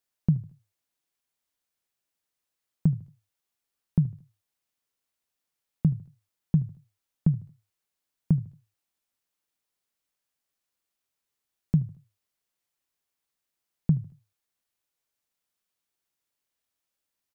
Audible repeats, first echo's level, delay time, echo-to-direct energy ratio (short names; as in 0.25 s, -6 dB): 2, -20.5 dB, 76 ms, -20.0 dB